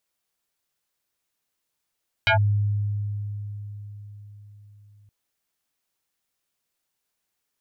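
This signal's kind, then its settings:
two-operator FM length 2.82 s, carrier 103 Hz, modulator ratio 7.45, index 4.5, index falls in 0.11 s linear, decay 4.62 s, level −15 dB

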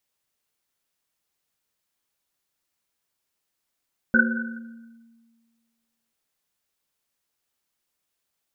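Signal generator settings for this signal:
drum after Risset length 1.99 s, pitch 230 Hz, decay 1.74 s, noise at 1,500 Hz, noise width 100 Hz, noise 50%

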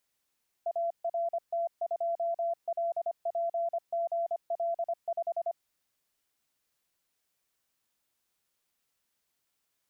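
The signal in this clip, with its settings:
Morse code "ART2LPGL5" 25 words per minute 678 Hz −27.5 dBFS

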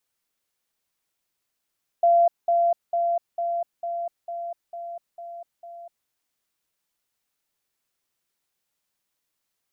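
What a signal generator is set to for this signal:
level staircase 686 Hz −14 dBFS, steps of −3 dB, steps 9, 0.25 s 0.20 s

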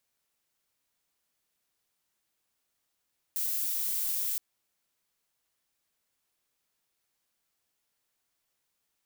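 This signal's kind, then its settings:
noise violet, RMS −31 dBFS 1.02 s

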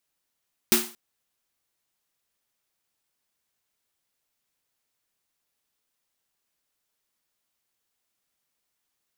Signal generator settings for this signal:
synth snare length 0.23 s, tones 230 Hz, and 360 Hz, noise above 700 Hz, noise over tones 4 dB, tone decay 0.32 s, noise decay 0.37 s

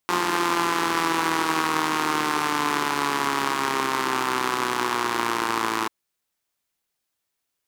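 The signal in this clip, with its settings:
pulse-train model of a four-cylinder engine, changing speed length 5.79 s, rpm 5,300, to 3,300, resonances 350/1,000 Hz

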